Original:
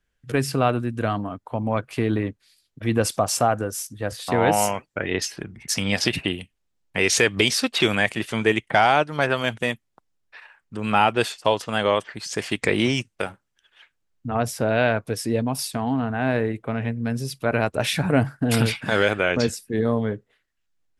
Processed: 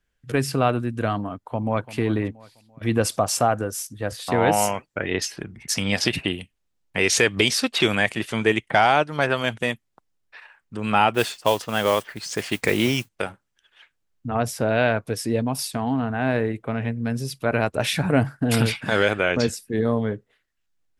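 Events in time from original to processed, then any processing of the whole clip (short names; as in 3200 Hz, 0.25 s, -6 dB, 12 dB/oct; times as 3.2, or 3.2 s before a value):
1.46–1.93 echo throw 0.34 s, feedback 40%, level -16 dB
11.14–13.09 modulation noise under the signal 18 dB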